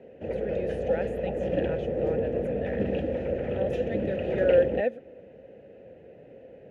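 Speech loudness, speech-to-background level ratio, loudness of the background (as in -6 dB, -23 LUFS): -30.0 LUFS, -0.5 dB, -29.5 LUFS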